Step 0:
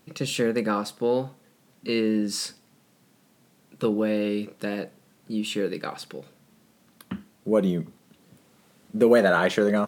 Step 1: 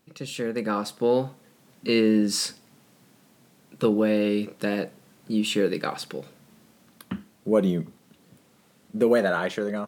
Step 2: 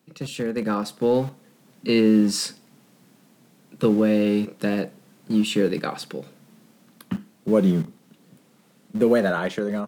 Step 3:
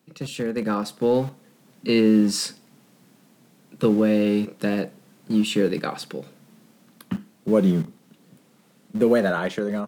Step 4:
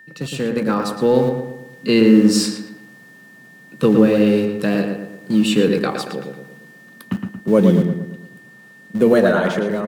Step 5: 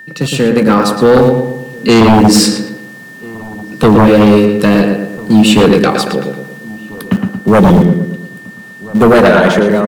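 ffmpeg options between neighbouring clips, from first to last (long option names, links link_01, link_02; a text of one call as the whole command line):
ffmpeg -i in.wav -af "dynaudnorm=framelen=130:gausssize=11:maxgain=11.5dB,volume=-7dB" out.wav
ffmpeg -i in.wav -filter_complex "[0:a]equalizer=frequency=160:width_type=o:width=1.8:gain=5.5,acrossover=split=120|1100|1800[link_01][link_02][link_03][link_04];[link_01]acrusher=bits=6:mix=0:aa=0.000001[link_05];[link_05][link_02][link_03][link_04]amix=inputs=4:normalize=0" out.wav
ffmpeg -i in.wav -af anull out.wav
ffmpeg -i in.wav -filter_complex "[0:a]aeval=exprs='val(0)+0.00447*sin(2*PI*1800*n/s)':channel_layout=same,asplit=2[link_01][link_02];[link_02]adelay=114,lowpass=frequency=2500:poles=1,volume=-4.5dB,asplit=2[link_03][link_04];[link_04]adelay=114,lowpass=frequency=2500:poles=1,volume=0.47,asplit=2[link_05][link_06];[link_06]adelay=114,lowpass=frequency=2500:poles=1,volume=0.47,asplit=2[link_07][link_08];[link_08]adelay=114,lowpass=frequency=2500:poles=1,volume=0.47,asplit=2[link_09][link_10];[link_10]adelay=114,lowpass=frequency=2500:poles=1,volume=0.47,asplit=2[link_11][link_12];[link_12]adelay=114,lowpass=frequency=2500:poles=1,volume=0.47[link_13];[link_03][link_05][link_07][link_09][link_11][link_13]amix=inputs=6:normalize=0[link_14];[link_01][link_14]amix=inputs=2:normalize=0,volume=4.5dB" out.wav
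ffmpeg -i in.wav -filter_complex "[0:a]aeval=exprs='0.891*sin(PI/2*2.82*val(0)/0.891)':channel_layout=same,asplit=2[link_01][link_02];[link_02]adelay=1341,volume=-21dB,highshelf=frequency=4000:gain=-30.2[link_03];[link_01][link_03]amix=inputs=2:normalize=0,volume=-1dB" out.wav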